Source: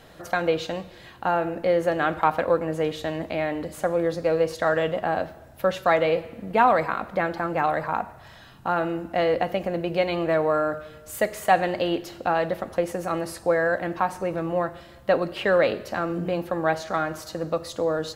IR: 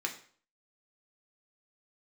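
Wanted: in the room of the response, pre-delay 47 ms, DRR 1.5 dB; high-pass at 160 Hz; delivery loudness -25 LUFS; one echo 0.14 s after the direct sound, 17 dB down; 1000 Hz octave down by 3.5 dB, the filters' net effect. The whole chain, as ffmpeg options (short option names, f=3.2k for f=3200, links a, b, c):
-filter_complex "[0:a]highpass=160,equalizer=f=1k:t=o:g=-5,aecho=1:1:140:0.141,asplit=2[a][b];[1:a]atrim=start_sample=2205,adelay=47[c];[b][c]afir=irnorm=-1:irlink=0,volume=-5dB[d];[a][d]amix=inputs=2:normalize=0,volume=-0.5dB"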